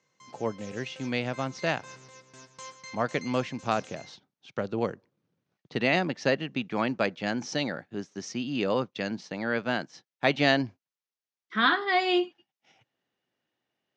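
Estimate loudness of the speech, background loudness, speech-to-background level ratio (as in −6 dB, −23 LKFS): −29.0 LKFS, −47.0 LKFS, 18.0 dB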